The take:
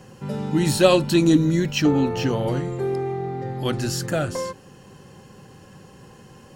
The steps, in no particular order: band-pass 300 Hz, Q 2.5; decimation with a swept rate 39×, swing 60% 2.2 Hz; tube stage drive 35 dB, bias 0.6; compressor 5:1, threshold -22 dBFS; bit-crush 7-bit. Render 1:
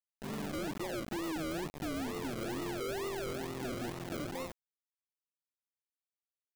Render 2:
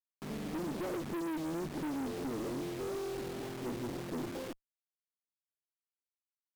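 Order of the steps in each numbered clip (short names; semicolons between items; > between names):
compressor > band-pass > decimation with a swept rate > tube stage > bit-crush; decimation with a swept rate > band-pass > compressor > bit-crush > tube stage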